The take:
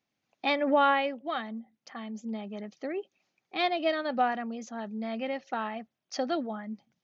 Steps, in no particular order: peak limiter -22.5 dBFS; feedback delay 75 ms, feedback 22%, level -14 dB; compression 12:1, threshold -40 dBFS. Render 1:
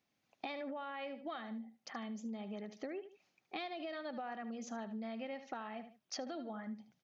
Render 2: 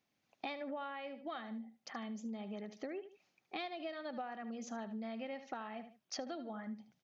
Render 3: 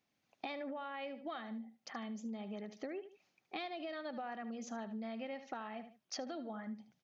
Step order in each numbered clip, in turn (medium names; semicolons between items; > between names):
feedback delay > peak limiter > compression; feedback delay > compression > peak limiter; peak limiter > feedback delay > compression